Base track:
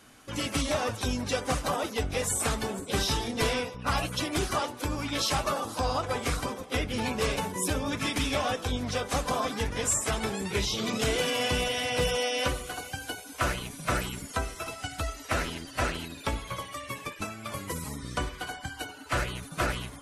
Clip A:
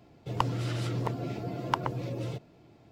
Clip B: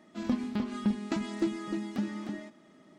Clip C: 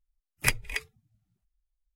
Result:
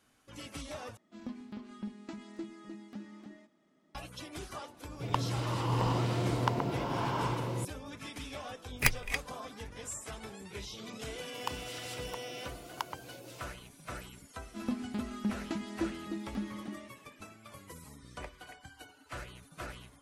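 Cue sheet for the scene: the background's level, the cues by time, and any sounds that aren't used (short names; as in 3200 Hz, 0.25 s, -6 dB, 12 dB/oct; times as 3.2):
base track -14.5 dB
0.97 replace with B -12.5 dB
4.74 add A -3 dB + bloom reverb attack 0.73 s, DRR -2.5 dB
8.38 add C -1.5 dB + tracing distortion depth 0.059 ms
11.07 add A -9.5 dB + RIAA curve recording
14.39 add B -5 dB
17.76 add C -2 dB + band-pass 640 Hz, Q 5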